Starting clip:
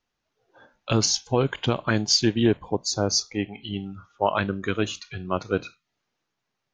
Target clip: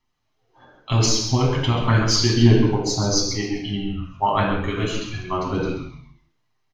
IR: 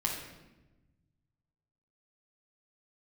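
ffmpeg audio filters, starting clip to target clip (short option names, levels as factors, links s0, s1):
-filter_complex "[0:a]aphaser=in_gain=1:out_gain=1:delay=2.7:decay=0.35:speed=1.6:type=sinusoidal,asplit=5[s0][s1][s2][s3][s4];[s1]adelay=133,afreqshift=-110,volume=0.376[s5];[s2]adelay=266,afreqshift=-220,volume=0.124[s6];[s3]adelay=399,afreqshift=-330,volume=0.0407[s7];[s4]adelay=532,afreqshift=-440,volume=0.0135[s8];[s0][s5][s6][s7][s8]amix=inputs=5:normalize=0[s9];[1:a]atrim=start_sample=2205,afade=t=out:st=0.26:d=0.01,atrim=end_sample=11907[s10];[s9][s10]afir=irnorm=-1:irlink=0,volume=0.708"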